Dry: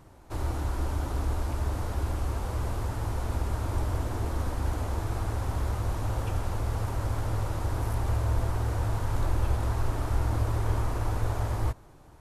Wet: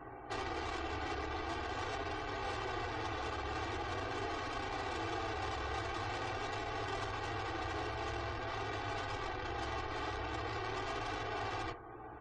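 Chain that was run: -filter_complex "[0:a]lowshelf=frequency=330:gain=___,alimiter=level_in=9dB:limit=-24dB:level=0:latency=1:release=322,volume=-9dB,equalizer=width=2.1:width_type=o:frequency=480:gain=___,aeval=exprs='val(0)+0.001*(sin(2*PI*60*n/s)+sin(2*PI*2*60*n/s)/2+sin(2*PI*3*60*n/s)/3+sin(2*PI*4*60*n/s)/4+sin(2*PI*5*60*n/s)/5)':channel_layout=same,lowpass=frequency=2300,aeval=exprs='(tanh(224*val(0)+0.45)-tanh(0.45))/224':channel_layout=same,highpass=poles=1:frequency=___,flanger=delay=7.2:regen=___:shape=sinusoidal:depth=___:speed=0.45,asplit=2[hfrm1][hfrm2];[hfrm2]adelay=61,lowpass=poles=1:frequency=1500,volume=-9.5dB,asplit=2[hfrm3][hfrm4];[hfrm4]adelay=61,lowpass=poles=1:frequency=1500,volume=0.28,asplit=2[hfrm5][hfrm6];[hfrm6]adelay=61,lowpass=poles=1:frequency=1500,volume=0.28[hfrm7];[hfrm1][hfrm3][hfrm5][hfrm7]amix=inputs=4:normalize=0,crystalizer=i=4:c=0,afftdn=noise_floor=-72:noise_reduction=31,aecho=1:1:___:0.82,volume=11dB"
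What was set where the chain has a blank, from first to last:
-12, 4, 65, -37, 2.2, 2.6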